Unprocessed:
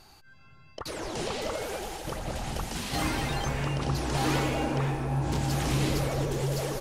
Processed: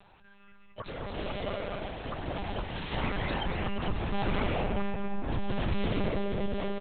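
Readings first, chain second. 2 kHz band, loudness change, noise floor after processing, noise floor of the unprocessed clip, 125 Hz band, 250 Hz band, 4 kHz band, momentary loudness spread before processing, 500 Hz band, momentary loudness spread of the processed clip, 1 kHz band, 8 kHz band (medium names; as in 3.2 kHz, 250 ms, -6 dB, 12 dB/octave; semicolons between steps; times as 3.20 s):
-2.5 dB, -3.5 dB, -55 dBFS, -54 dBFS, -6.0 dB, -2.0 dB, -5.0 dB, 9 LU, -2.0 dB, 7 LU, -3.0 dB, under -40 dB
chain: on a send: delay 232 ms -8 dB; on the sum: monotone LPC vocoder at 8 kHz 200 Hz; trim -2 dB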